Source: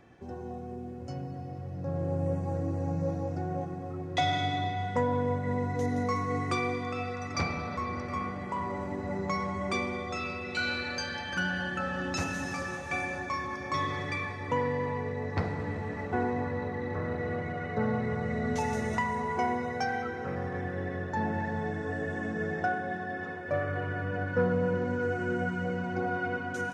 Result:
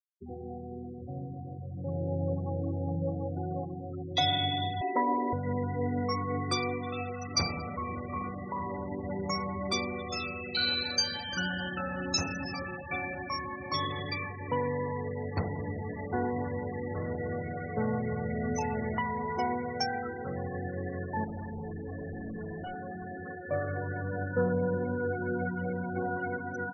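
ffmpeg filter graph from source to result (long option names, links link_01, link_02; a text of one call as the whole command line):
ffmpeg -i in.wav -filter_complex "[0:a]asettb=1/sr,asplit=3[link_01][link_02][link_03];[link_01]atrim=end=4.814[link_04];[link_02]atrim=start=4.81:end=5.33,asetpts=PTS-STARTPTS,afade=type=in:duration=0.004:curve=qsin,afade=type=out:start_time=0.516:duration=0.004:curve=qsin,highpass=frequency=370:width_type=q:width=4.3,aecho=1:1:3.1:0.92,atrim=end_sample=22932[link_05];[link_03]atrim=start=5.326[link_06];[link_04][link_05]acrossfade=duration=0.004:curve1=hsin:curve2=qsin[link_07];[link_07][link_06]acrossfade=duration=0.004:curve1=qsin:curve2=hsin,asettb=1/sr,asplit=3[link_08][link_09][link_10];[link_08]atrim=end=21.244[link_11];[link_09]atrim=start=21.24:end=23.26,asetpts=PTS-STARTPTS,afade=type=in:duration=0.004:curve=qsin,afade=type=out:start_time=2.016:duration=0.004:curve=qsin,highpass=55,lowshelf=frequency=320:gain=7.5,aeval=exprs='(tanh(56.2*val(0)+0.1)-tanh(0.1))/56.2':channel_layout=same[link_12];[link_10]atrim=start=23.256[link_13];[link_11][link_12]acrossfade=duration=0.004:curve1=hsin:curve2=qsin[link_14];[link_14][link_13]acrossfade=duration=0.004:curve1=qsin:curve2=hsin,afftfilt=real='re*gte(hypot(re,im),0.0224)':imag='im*gte(hypot(re,im),0.0224)':win_size=1024:overlap=0.75,highshelf=frequency=3000:width_type=q:width=1.5:gain=9.5,volume=-1dB" out.wav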